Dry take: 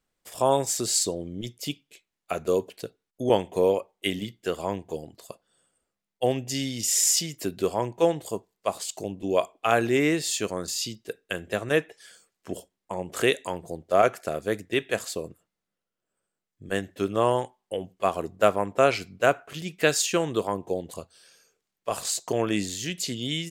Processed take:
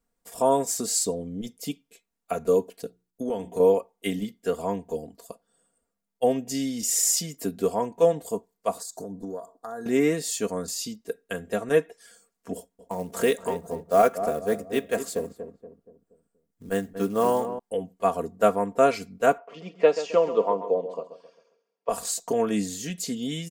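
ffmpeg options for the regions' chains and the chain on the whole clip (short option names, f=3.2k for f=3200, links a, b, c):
-filter_complex "[0:a]asettb=1/sr,asplit=3[a][b][c];[a]atrim=end=2.824[d];[b]atrim=start=2.82:end=3.6,asetpts=PTS-STARTPTS,afade=t=in:d=0.004:c=qsin,afade=t=out:st=0.776:d=0.004:c=qsin,equalizer=f=1.2k:w=0.86:g=-4,bandreject=f=60:t=h:w=6,bandreject=f=120:t=h:w=6,bandreject=f=180:t=h:w=6,bandreject=f=240:t=h:w=6,bandreject=f=300:t=h:w=6,bandreject=f=360:t=h:w=6,acompressor=threshold=-27dB:ratio=3:attack=3.2:release=140:knee=1:detection=peak[e];[c]atrim=start=3.596[f];[d][e]acrossfade=d=0.004:c1=hsin:c2=qsin[g];[g][f]acrossfade=d=0.004:c1=qsin:c2=hsin,asettb=1/sr,asplit=3[h][i][j];[h]atrim=end=8.804[k];[i]atrim=start=8.8:end=9.86,asetpts=PTS-STARTPTS,afade=t=in:d=0.004:c=qsin,afade=t=out:st=1.056:d=0.004:c=qsin,acompressor=threshold=-31dB:ratio=12:attack=3.2:release=140:knee=1:detection=peak,asuperstop=centerf=2600:order=8:qfactor=1.3[l];[j]atrim=start=9.856[m];[k][l]acrossfade=d=0.004:c1=hsin:c2=qsin[n];[n][m]acrossfade=d=0.004:c1=qsin:c2=hsin,asettb=1/sr,asplit=3[o][p][q];[o]atrim=end=12.554[r];[p]atrim=start=12.55:end=17.59,asetpts=PTS-STARTPTS,afade=t=in:d=0.004:c=qsin,afade=t=out:st=5.036:d=0.004:c=qsin,acrusher=bits=5:mode=log:mix=0:aa=0.000001,asplit=2[s][t];[t]adelay=237,lowpass=f=970:p=1,volume=-9dB,asplit=2[u][v];[v]adelay=237,lowpass=f=970:p=1,volume=0.46,asplit=2[w][x];[x]adelay=237,lowpass=f=970:p=1,volume=0.46,asplit=2[y][z];[z]adelay=237,lowpass=f=970:p=1,volume=0.46,asplit=2[aa][ab];[ab]adelay=237,lowpass=f=970:p=1,volume=0.46[ac];[s][u][w][y][aa][ac]amix=inputs=6:normalize=0,atrim=end_sample=222264[ad];[q]atrim=start=17.586[ae];[r][ad]acrossfade=d=0.004:c1=hsin:c2=qsin[af];[af][ae]acrossfade=d=0.004:c1=qsin:c2=hsin,asettb=1/sr,asplit=3[ag][ah][ai];[ag]atrim=end=19.384[aj];[ah]atrim=start=19.38:end=21.89,asetpts=PTS-STARTPTS,afade=t=in:d=0.004:c=qsin,afade=t=out:st=2.506:d=0.004:c=qsin,highpass=f=210:w=0.5412,highpass=f=210:w=1.3066,equalizer=f=250:t=q:w=4:g=-9,equalizer=f=560:t=q:w=4:g=8,equalizer=f=1k:t=q:w=4:g=6,equalizer=f=1.6k:t=q:w=4:g=-9,equalizer=f=3.9k:t=q:w=4:g=-9,lowpass=f=4.3k:w=0.5412,lowpass=f=4.3k:w=1.3066,aecho=1:1:133|266|399|532:0.251|0.098|0.0382|0.0149,atrim=end_sample=110691[ak];[ai]atrim=start=21.886[al];[aj][ak]acrossfade=d=0.004:c1=hsin:c2=qsin[am];[am][al]acrossfade=d=0.004:c1=qsin:c2=hsin,equalizer=f=3k:w=0.71:g=-9,aecho=1:1:4.3:0.73"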